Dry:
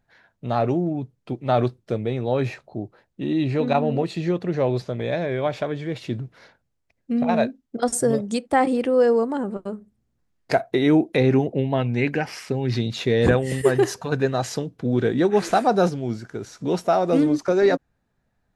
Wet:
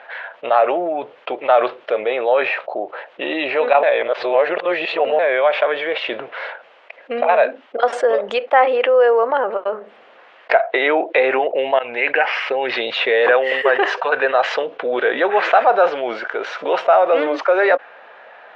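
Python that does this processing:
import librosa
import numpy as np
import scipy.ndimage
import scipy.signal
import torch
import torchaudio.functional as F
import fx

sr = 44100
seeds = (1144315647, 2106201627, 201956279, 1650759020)

y = fx.edit(x, sr, fx.reverse_span(start_s=3.83, length_s=1.36),
    fx.fade_in_from(start_s=11.79, length_s=0.41, floor_db=-24.0), tone=tone)
y = scipy.signal.sosfilt(scipy.signal.cheby1(3, 1.0, [530.0, 3000.0], 'bandpass', fs=sr, output='sos'), y)
y = fx.dynamic_eq(y, sr, hz=1500.0, q=0.81, threshold_db=-36.0, ratio=4.0, max_db=3)
y = fx.env_flatten(y, sr, amount_pct=50)
y = y * librosa.db_to_amplitude(5.0)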